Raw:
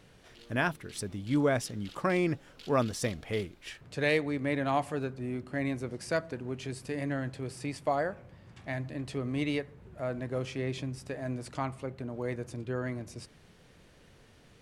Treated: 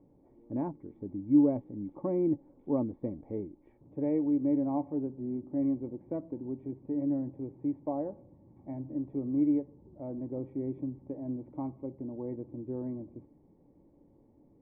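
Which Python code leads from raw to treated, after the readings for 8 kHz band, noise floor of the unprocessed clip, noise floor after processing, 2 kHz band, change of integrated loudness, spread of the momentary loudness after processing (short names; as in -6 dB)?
under -35 dB, -59 dBFS, -63 dBFS, under -30 dB, 0.0 dB, 13 LU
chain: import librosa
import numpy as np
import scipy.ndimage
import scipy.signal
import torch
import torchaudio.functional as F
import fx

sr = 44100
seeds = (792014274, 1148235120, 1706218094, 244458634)

y = fx.formant_cascade(x, sr, vowel='u')
y = fx.small_body(y, sr, hz=(560.0, 1100.0, 1900.0), ring_ms=45, db=9)
y = y * 10.0 ** (7.0 / 20.0)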